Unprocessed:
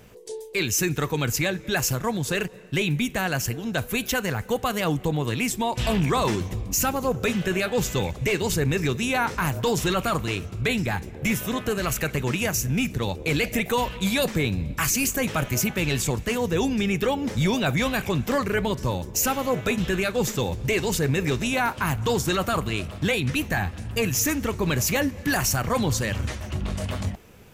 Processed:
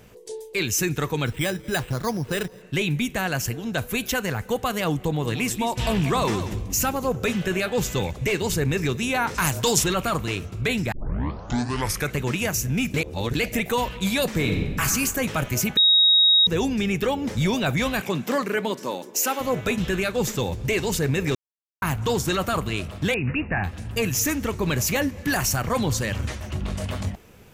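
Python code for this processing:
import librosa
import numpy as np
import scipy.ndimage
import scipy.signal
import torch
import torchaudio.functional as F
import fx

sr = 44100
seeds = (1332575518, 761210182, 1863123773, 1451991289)

y = fx.resample_bad(x, sr, factor=8, down='filtered', up='hold', at=(1.26, 2.62))
y = fx.echo_single(y, sr, ms=187, db=-11.5, at=(5.02, 6.89))
y = fx.peak_eq(y, sr, hz=7800.0, db=12.0, octaves=2.4, at=(9.34, 9.82), fade=0.02)
y = fx.reverb_throw(y, sr, start_s=14.28, length_s=0.53, rt60_s=1.4, drr_db=2.0)
y = fx.highpass(y, sr, hz=fx.line((18.0, 140.0), (19.39, 300.0)), slope=24, at=(18.0, 19.39), fade=0.02)
y = fx.brickwall_lowpass(y, sr, high_hz=2900.0, at=(23.14, 23.64))
y = fx.edit(y, sr, fx.tape_start(start_s=10.92, length_s=1.21),
    fx.reverse_span(start_s=12.94, length_s=0.41),
    fx.bleep(start_s=15.77, length_s=0.7, hz=3780.0, db=-13.0),
    fx.silence(start_s=21.35, length_s=0.47), tone=tone)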